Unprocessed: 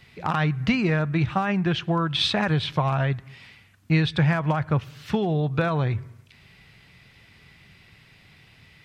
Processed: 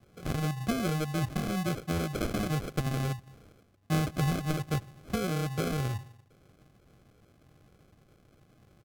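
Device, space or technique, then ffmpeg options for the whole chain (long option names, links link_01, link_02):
crushed at another speed: -af "asetrate=55125,aresample=44100,acrusher=samples=38:mix=1:aa=0.000001,asetrate=35280,aresample=44100,volume=-7.5dB"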